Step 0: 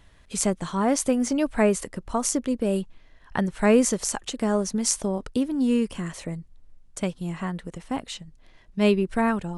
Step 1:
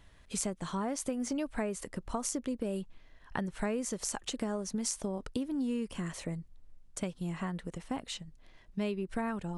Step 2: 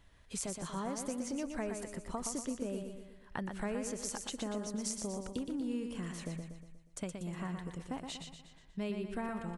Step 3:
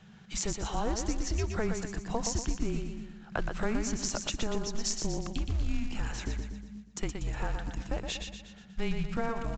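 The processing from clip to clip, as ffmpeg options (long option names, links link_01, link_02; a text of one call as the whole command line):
ffmpeg -i in.wav -af "acompressor=threshold=-27dB:ratio=6,volume=-4dB" out.wav
ffmpeg -i in.wav -af "aecho=1:1:120|240|360|480|600|720:0.501|0.246|0.12|0.059|0.0289|0.0142,volume=-4.5dB" out.wav
ffmpeg -i in.wav -af "afreqshift=-220,acrusher=bits=6:mode=log:mix=0:aa=0.000001,aresample=16000,aresample=44100,volume=8dB" out.wav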